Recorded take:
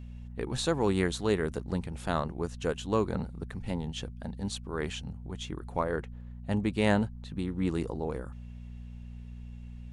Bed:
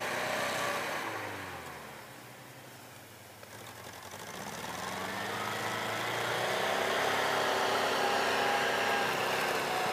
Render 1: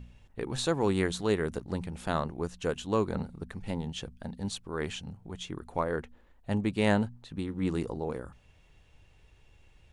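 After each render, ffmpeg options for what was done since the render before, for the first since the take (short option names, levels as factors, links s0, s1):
-af "bandreject=f=60:t=h:w=4,bandreject=f=120:t=h:w=4,bandreject=f=180:t=h:w=4,bandreject=f=240:t=h:w=4"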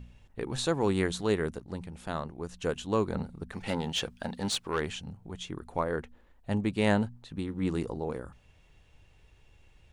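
-filter_complex "[0:a]asplit=3[s0][s1][s2];[s0]afade=t=out:st=3.52:d=0.02[s3];[s1]asplit=2[s4][s5];[s5]highpass=f=720:p=1,volume=7.94,asoftclip=type=tanh:threshold=0.119[s6];[s4][s6]amix=inputs=2:normalize=0,lowpass=f=6200:p=1,volume=0.501,afade=t=in:st=3.52:d=0.02,afade=t=out:st=4.79:d=0.02[s7];[s2]afade=t=in:st=4.79:d=0.02[s8];[s3][s7][s8]amix=inputs=3:normalize=0,asplit=3[s9][s10][s11];[s9]atrim=end=1.512[s12];[s10]atrim=start=1.508:end=2.492,asetpts=PTS-STARTPTS,volume=0.596[s13];[s11]atrim=start=2.488[s14];[s12][s13]acrossfade=d=0.004:c1=hsin:c2=hsin[s15];[s15][s14]acrossfade=d=0.004:c1=hsin:c2=hsin"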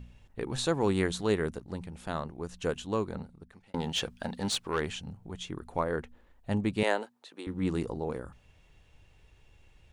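-filter_complex "[0:a]asettb=1/sr,asplit=3[s0][s1][s2];[s0]atrim=end=6.834[s3];[s1]atrim=start=6.83:end=7.47,asetpts=PTS-STARTPTS,afade=t=in:d=0.004:c=qsin,afade=t=out:st=0.636:d=0.004:c=qsin,highpass=f=360:w=0.5412,highpass=f=360:w=1.3066[s4];[s2]atrim=start=7.466[s5];[s3][s4]acrossfade=d=0.004:c1=hsin:c2=qsin[s6];[s6][s5]acrossfade=d=0.004:c1=qsin:c2=hsin,asplit=2[s7][s8];[s7]atrim=end=3.74,asetpts=PTS-STARTPTS,afade=t=out:st=2.66:d=1.08[s9];[s8]atrim=start=3.74,asetpts=PTS-STARTPTS,afade=t=in:d=0.004:c=hsin[s10];[s9][s10]concat=n=2:v=0:a=1"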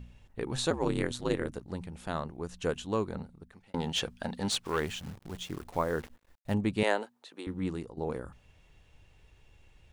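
-filter_complex "[0:a]asettb=1/sr,asplit=3[s0][s1][s2];[s0]atrim=end=0.704[s3];[s1]atrim=start=0.7:end=1.52,asetpts=PTS-STARTPTS,afade=t=in:d=0.004:c=qsin,afade=t=out:st=0.816:d=0.004:c=qsin,aeval=exprs='val(0)*sin(2*PI*65*n/s)':c=same[s4];[s2]atrim=start=1.516[s5];[s3][s4]acrossfade=d=0.004:c1=hsin:c2=qsin[s6];[s6][s5]acrossfade=d=0.004:c1=qsin:c2=hsin,asettb=1/sr,asplit=3[s7][s8][s9];[s7]atrim=end=4.644[s10];[s8]atrim=start=4.64:end=6.54,asetpts=PTS-STARTPTS,afade=t=in:d=0.004:c=qsin,afade=t=out:st=1.896:d=0.004:c=qsin,acrusher=bits=9:dc=4:mix=0:aa=0.000001[s11];[s9]atrim=start=6.536[s12];[s10][s11]acrossfade=d=0.004:c1=hsin:c2=qsin[s13];[s13][s12]acrossfade=d=0.004:c1=qsin:c2=hsin,asplit=2[s14][s15];[s14]atrim=end=7.97,asetpts=PTS-STARTPTS,afade=t=out:st=7.47:d=0.5:silence=0.177828[s16];[s15]atrim=start=7.97,asetpts=PTS-STARTPTS,afade=t=in:d=0.004:c=hsin:silence=0.177828[s17];[s16][s17]concat=n=2:v=0:a=1"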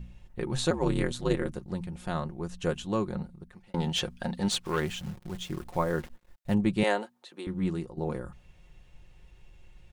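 -af "lowshelf=f=190:g=6,aecho=1:1:5.6:0.5"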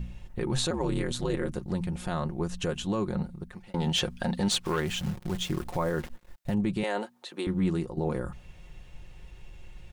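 -filter_complex "[0:a]asplit=2[s0][s1];[s1]acompressor=threshold=0.02:ratio=6,volume=1.26[s2];[s0][s2]amix=inputs=2:normalize=0,alimiter=limit=0.119:level=0:latency=1:release=31"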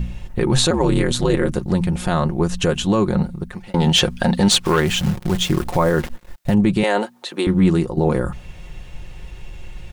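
-af "volume=3.98"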